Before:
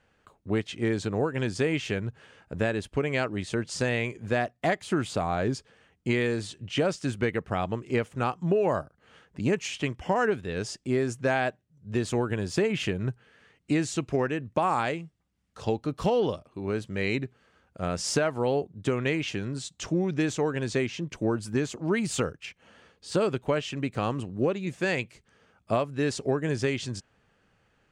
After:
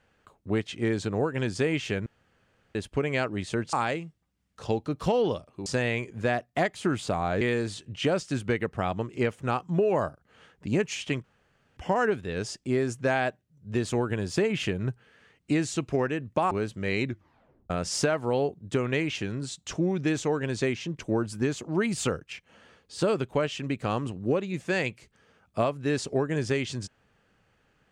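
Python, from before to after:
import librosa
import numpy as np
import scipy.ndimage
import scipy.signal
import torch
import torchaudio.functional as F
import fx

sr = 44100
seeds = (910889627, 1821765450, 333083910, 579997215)

y = fx.edit(x, sr, fx.room_tone_fill(start_s=2.06, length_s=0.69),
    fx.cut(start_s=5.48, length_s=0.66),
    fx.insert_room_tone(at_s=9.97, length_s=0.53),
    fx.move(start_s=14.71, length_s=1.93, to_s=3.73),
    fx.tape_stop(start_s=17.19, length_s=0.64), tone=tone)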